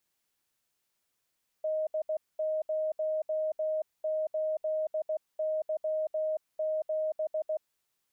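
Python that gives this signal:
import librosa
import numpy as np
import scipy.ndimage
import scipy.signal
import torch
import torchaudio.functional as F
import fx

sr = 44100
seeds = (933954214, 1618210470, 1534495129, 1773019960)

y = fx.morse(sr, text='D08Y7', wpm=16, hz=624.0, level_db=-27.5)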